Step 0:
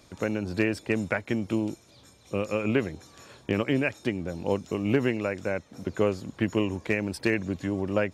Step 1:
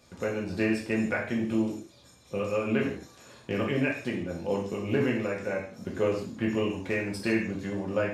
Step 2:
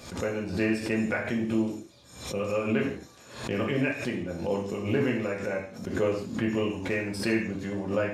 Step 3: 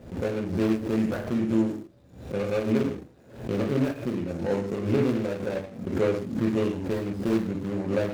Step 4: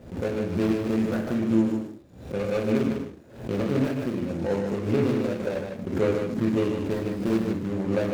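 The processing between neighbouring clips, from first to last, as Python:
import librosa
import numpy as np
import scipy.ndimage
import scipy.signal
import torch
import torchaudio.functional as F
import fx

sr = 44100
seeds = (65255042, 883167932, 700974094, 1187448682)

y1 = fx.rev_gated(x, sr, seeds[0], gate_ms=190, shape='falling', drr_db=-3.0)
y1 = F.gain(torch.from_numpy(y1), -6.0).numpy()
y2 = fx.pre_swell(y1, sr, db_per_s=89.0)
y3 = scipy.ndimage.median_filter(y2, 41, mode='constant')
y3 = F.gain(torch.from_numpy(y3), 3.5).numpy()
y4 = y3 + 10.0 ** (-5.5 / 20.0) * np.pad(y3, (int(152 * sr / 1000.0), 0))[:len(y3)]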